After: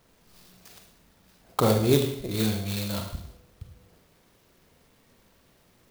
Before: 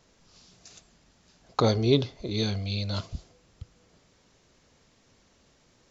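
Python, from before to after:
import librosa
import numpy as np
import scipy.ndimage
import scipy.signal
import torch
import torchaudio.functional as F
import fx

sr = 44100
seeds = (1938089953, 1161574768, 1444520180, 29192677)

y = fx.rev_schroeder(x, sr, rt60_s=0.66, comb_ms=33, drr_db=3.0)
y = fx.clock_jitter(y, sr, seeds[0], jitter_ms=0.038)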